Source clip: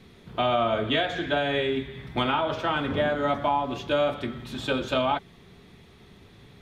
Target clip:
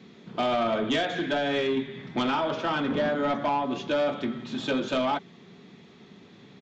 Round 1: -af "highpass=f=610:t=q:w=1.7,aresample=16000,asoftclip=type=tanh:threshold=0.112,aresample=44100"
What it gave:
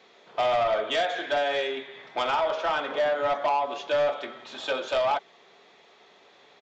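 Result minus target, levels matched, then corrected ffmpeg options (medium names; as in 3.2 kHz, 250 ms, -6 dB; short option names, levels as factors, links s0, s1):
250 Hz band -15.0 dB
-af "highpass=f=200:t=q:w=1.7,aresample=16000,asoftclip=type=tanh:threshold=0.112,aresample=44100"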